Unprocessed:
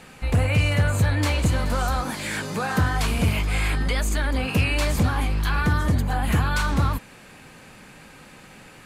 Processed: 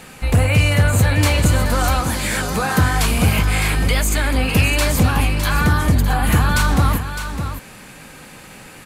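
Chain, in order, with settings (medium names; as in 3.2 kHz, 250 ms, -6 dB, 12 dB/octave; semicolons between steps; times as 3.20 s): treble shelf 9 kHz +9.5 dB; on a send: delay 609 ms -9 dB; on the sum: trim +5.5 dB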